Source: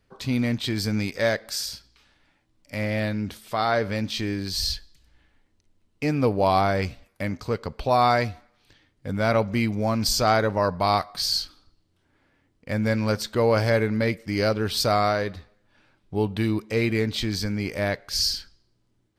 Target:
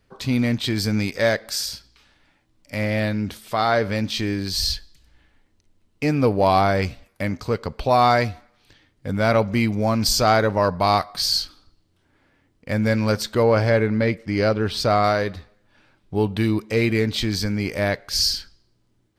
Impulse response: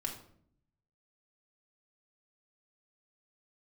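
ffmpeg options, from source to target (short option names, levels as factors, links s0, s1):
-filter_complex "[0:a]asettb=1/sr,asplit=3[s0][s1][s2];[s0]atrim=end=13.434[s3];[s1]atrim=start=13.43:end=15.04,asetpts=PTS-STARTPTS,afade=t=in:d=0.004:c=qsin,afade=t=out:st=1.606:d=0.004:c=qsin,aemphasis=mode=reproduction:type=50kf[s4];[s2]atrim=start=15.036[s5];[s3][s4]acrossfade=d=0.004:c1=hsin:c2=qsin[s6];[s6][s5]acrossfade=d=0.004:c1=qsin:c2=hsin,asplit=2[s7][s8];[s8]volume=6.31,asoftclip=hard,volume=0.158,volume=0.251[s9];[s7][s9]amix=inputs=2:normalize=0,volume=1.19"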